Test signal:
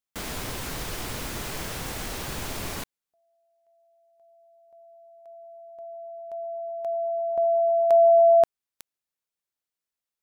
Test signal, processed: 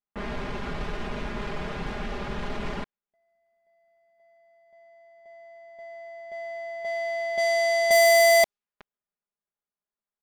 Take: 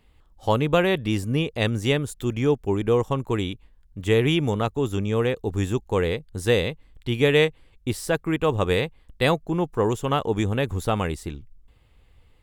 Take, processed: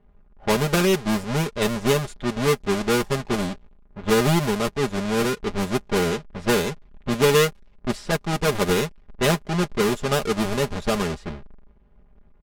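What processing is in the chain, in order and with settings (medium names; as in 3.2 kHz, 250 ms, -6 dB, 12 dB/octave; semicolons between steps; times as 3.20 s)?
square wave that keeps the level; level-controlled noise filter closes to 1.5 kHz, open at -13.5 dBFS; comb 4.9 ms, depth 71%; trim -5 dB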